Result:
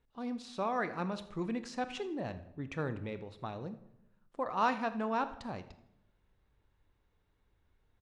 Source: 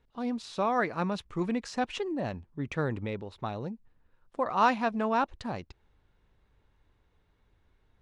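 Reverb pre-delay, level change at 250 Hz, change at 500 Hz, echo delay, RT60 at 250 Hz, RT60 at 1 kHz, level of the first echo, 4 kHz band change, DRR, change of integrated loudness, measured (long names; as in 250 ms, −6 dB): 22 ms, −5.5 dB, −5.5 dB, 81 ms, 1.1 s, 0.75 s, −19.5 dB, −5.5 dB, 11.0 dB, −5.5 dB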